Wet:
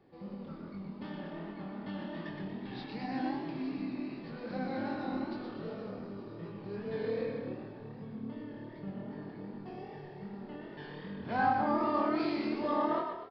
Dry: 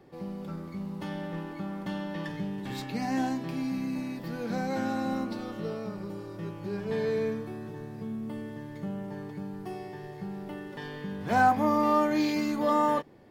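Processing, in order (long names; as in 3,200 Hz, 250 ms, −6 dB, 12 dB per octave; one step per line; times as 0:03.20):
echo with shifted repeats 119 ms, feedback 46%, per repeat +38 Hz, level −5 dB
chorus effect 2.6 Hz, delay 19.5 ms, depth 7.8 ms
downsampling to 11,025 Hz
level −4.5 dB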